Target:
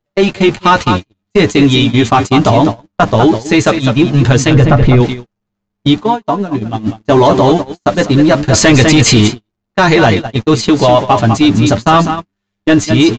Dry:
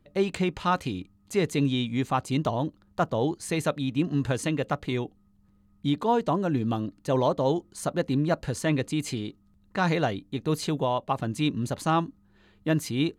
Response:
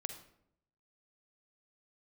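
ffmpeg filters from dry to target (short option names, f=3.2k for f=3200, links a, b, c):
-filter_complex "[0:a]aeval=exprs='val(0)+0.5*0.0112*sgn(val(0))':c=same,aresample=16000,aresample=44100,aecho=1:1:201:0.355,flanger=delay=8.5:depth=1.8:regen=13:speed=0.21:shape=sinusoidal,asplit=3[a][b][c];[a]afade=t=out:st=4.53:d=0.02[d];[b]aemphasis=mode=reproduction:type=riaa,afade=t=in:st=4.53:d=0.02,afade=t=out:st=4.99:d=0.02[e];[c]afade=t=in:st=4.99:d=0.02[f];[d][e][f]amix=inputs=3:normalize=0,asplit=3[g][h][i];[g]afade=t=out:st=5.93:d=0.02[j];[h]acompressor=threshold=-32dB:ratio=4,afade=t=in:st=5.93:d=0.02,afade=t=out:st=6.85:d=0.02[k];[i]afade=t=in:st=6.85:d=0.02[l];[j][k][l]amix=inputs=3:normalize=0,bandreject=f=510:w=12,asettb=1/sr,asplit=3[m][n][o];[m]atrim=end=8.534[p];[n]atrim=start=8.53:end=9.28,asetpts=PTS-STARTPTS,afade=t=in:d=0.004:c=qsin,afade=t=out:st=0.746:d=0.004:c=qsin,acontrast=67[q];[o]atrim=start=9.276[r];[p][q]acrossfade=d=0.004:c1=hsin:c2=qsin[s];[s][r]acrossfade=d=0.004:c1=qsin:c2=hsin,agate=range=-51dB:threshold=-33dB:ratio=16:detection=peak,apsyclip=24.5dB,volume=-2dB"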